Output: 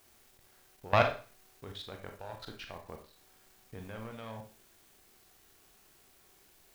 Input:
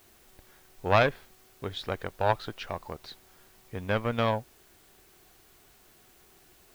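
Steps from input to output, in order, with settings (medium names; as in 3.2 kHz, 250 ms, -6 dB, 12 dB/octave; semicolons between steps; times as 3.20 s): level held to a coarse grid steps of 21 dB; word length cut 10-bit, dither none; Schroeder reverb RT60 0.38 s, combs from 28 ms, DRR 4 dB; trim -2.5 dB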